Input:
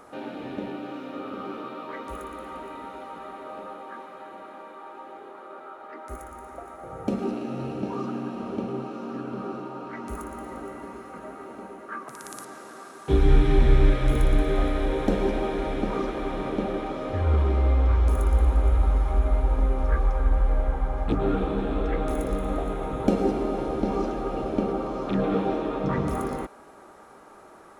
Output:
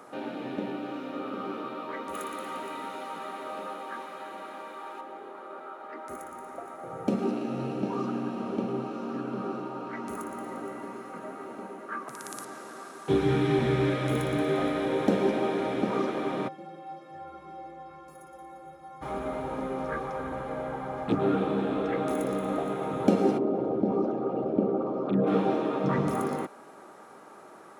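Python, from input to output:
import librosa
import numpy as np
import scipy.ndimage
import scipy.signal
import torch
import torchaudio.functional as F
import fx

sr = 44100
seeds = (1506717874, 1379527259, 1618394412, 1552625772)

y = fx.high_shelf(x, sr, hz=2100.0, db=9.0, at=(2.14, 5.01))
y = fx.stiff_resonator(y, sr, f0_hz=160.0, decay_s=0.56, stiffness=0.03, at=(16.47, 19.01), fade=0.02)
y = fx.envelope_sharpen(y, sr, power=1.5, at=(23.37, 25.26), fade=0.02)
y = scipy.signal.sosfilt(scipy.signal.butter(4, 120.0, 'highpass', fs=sr, output='sos'), y)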